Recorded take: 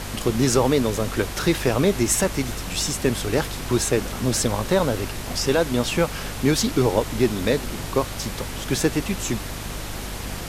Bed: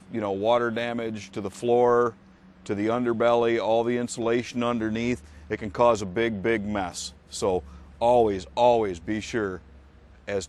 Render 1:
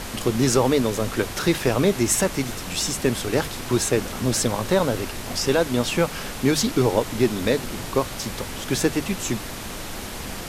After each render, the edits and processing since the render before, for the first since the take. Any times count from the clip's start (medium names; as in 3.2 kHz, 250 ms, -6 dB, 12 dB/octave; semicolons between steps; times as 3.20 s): hum notches 50/100/150 Hz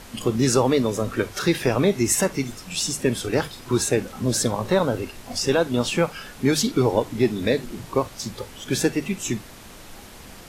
noise print and reduce 10 dB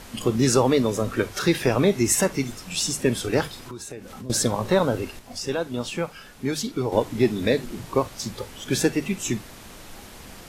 3.62–4.30 s: compression 4:1, threshold -36 dBFS; 5.19–6.92 s: gain -6.5 dB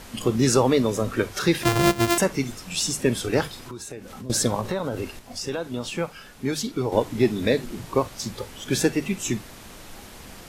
1.63–2.18 s: sorted samples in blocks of 128 samples; 4.60–5.98 s: compression 4:1, threshold -23 dBFS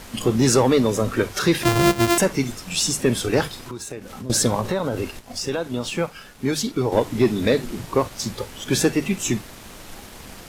waveshaping leveller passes 1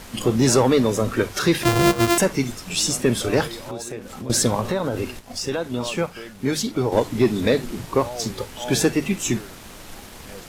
add bed -14 dB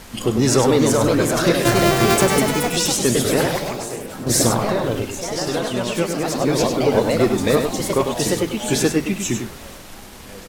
ever faster or slower copies 438 ms, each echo +2 st, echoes 3; delay 100 ms -6.5 dB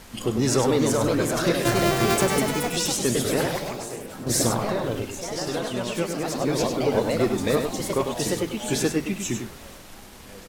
trim -5.5 dB